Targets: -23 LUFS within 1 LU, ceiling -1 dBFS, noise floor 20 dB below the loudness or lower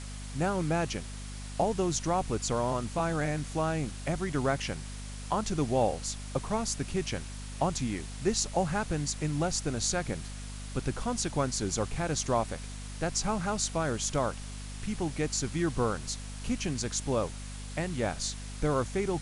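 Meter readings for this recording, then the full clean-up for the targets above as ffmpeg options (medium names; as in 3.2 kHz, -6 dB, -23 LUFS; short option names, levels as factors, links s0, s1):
hum 50 Hz; highest harmonic 250 Hz; hum level -38 dBFS; noise floor -41 dBFS; noise floor target -52 dBFS; loudness -31.5 LUFS; peak level -14.5 dBFS; loudness target -23.0 LUFS
-> -af "bandreject=f=50:t=h:w=4,bandreject=f=100:t=h:w=4,bandreject=f=150:t=h:w=4,bandreject=f=200:t=h:w=4,bandreject=f=250:t=h:w=4"
-af "afftdn=nr=11:nf=-41"
-af "volume=2.66"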